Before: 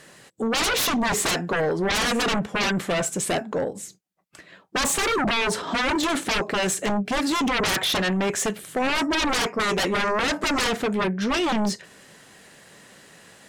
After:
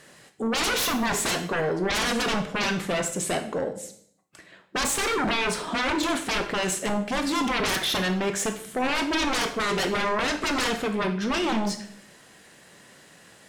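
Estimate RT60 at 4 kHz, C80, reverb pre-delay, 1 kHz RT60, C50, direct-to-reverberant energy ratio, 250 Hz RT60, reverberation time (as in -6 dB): 0.55 s, 14.0 dB, 17 ms, 0.60 s, 10.5 dB, 7.0 dB, 0.70 s, 0.65 s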